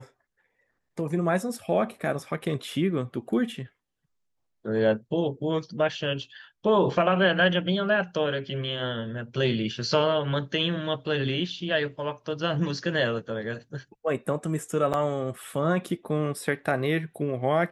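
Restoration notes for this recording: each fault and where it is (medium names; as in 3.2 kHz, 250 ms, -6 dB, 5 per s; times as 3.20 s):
14.93–14.94 s: dropout 8.3 ms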